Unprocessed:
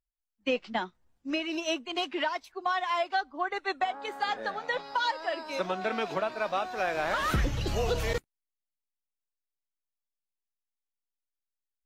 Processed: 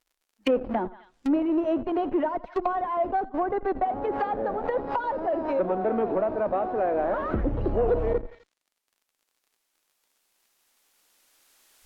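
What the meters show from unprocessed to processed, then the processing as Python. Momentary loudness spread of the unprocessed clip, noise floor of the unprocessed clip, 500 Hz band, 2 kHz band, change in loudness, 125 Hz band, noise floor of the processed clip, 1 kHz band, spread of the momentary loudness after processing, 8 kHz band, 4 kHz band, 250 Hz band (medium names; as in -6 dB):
5 LU, under -85 dBFS, +7.5 dB, -7.5 dB, +4.0 dB, +0.5 dB, -80 dBFS, +3.0 dB, 4 LU, under -15 dB, under -10 dB, +9.5 dB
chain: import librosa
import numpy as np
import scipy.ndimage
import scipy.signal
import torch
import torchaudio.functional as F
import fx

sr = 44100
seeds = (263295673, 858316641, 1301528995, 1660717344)

p1 = fx.recorder_agc(x, sr, target_db=-21.5, rise_db_per_s=8.0, max_gain_db=30)
p2 = p1 + fx.echo_feedback(p1, sr, ms=85, feedback_pct=40, wet_db=-18.0, dry=0)
p3 = fx.dmg_crackle(p2, sr, seeds[0], per_s=58.0, level_db=-62.0)
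p4 = fx.schmitt(p3, sr, flips_db=-38.5)
p5 = p3 + (p4 * 10.0 ** (-6.0 / 20.0))
p6 = fx.peak_eq(p5, sr, hz=61.0, db=-12.0, octaves=1.6)
p7 = fx.env_lowpass_down(p6, sr, base_hz=570.0, full_db=-28.0)
p8 = fx.cheby_harmonics(p7, sr, harmonics=(5,), levels_db=(-27,), full_scale_db=-19.0)
p9 = fx.peak_eq(p8, sr, hz=150.0, db=-13.5, octaves=0.49)
y = p9 * 10.0 ** (7.0 / 20.0)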